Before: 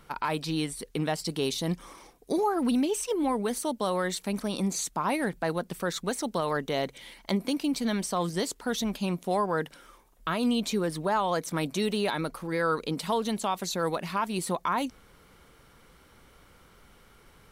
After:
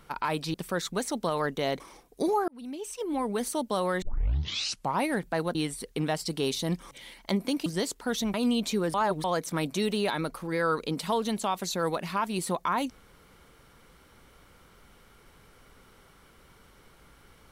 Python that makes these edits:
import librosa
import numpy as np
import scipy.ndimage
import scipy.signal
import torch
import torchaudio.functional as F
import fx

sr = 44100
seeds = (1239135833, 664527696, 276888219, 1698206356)

y = fx.edit(x, sr, fx.swap(start_s=0.54, length_s=1.36, other_s=5.65, other_length_s=1.26),
    fx.fade_in_span(start_s=2.58, length_s=0.96),
    fx.tape_start(start_s=4.12, length_s=0.99),
    fx.cut(start_s=7.66, length_s=0.6),
    fx.cut(start_s=8.94, length_s=1.4),
    fx.reverse_span(start_s=10.94, length_s=0.3), tone=tone)